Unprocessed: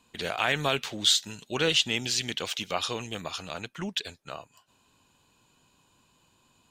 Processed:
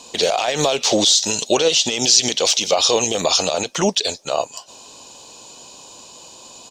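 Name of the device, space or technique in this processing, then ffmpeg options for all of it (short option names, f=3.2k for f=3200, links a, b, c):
mastering chain: -af "equalizer=f=700:t=o:w=1.4:g=3,acompressor=threshold=-27dB:ratio=2.5,asoftclip=type=tanh:threshold=-17dB,tiltshelf=f=1.2k:g=-6,asoftclip=type=hard:threshold=-16dB,alimiter=level_in=27.5dB:limit=-1dB:release=50:level=0:latency=1,firequalizer=gain_entry='entry(120,0);entry(240,6);entry(520,14);entry(1500,-5);entry(5700,13);entry(11000,-7)':delay=0.05:min_phase=1,volume=-12dB"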